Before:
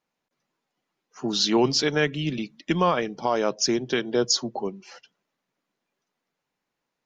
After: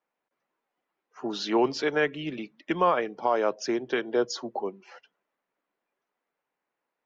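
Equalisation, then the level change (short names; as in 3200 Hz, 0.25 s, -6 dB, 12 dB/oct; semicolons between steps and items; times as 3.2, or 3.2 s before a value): three-band isolator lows -14 dB, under 300 Hz, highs -15 dB, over 2600 Hz; 0.0 dB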